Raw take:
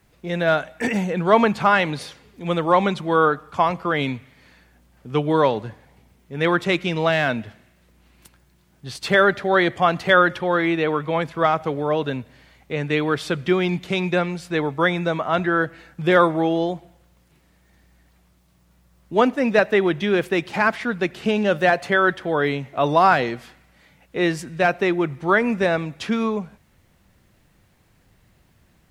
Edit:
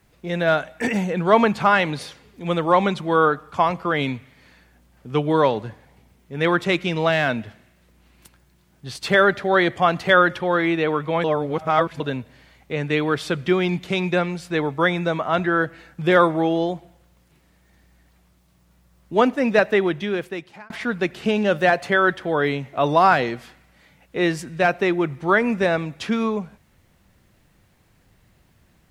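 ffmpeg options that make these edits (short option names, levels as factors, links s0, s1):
-filter_complex "[0:a]asplit=4[s0][s1][s2][s3];[s0]atrim=end=11.242[s4];[s1]atrim=start=11.238:end=12.002,asetpts=PTS-STARTPTS,areverse[s5];[s2]atrim=start=11.998:end=20.7,asetpts=PTS-STARTPTS,afade=t=out:st=7.712:d=0.99[s6];[s3]atrim=start=20.7,asetpts=PTS-STARTPTS,afade=t=in:d=0.004:c=hsin[s7];[s4][s5]acrossfade=d=0.004:c1=hsin:c2=hsin[s8];[s6][s7]concat=n=2:v=0:a=1[s9];[s8][s9]acrossfade=d=0.004:c1=hsin:c2=hsin"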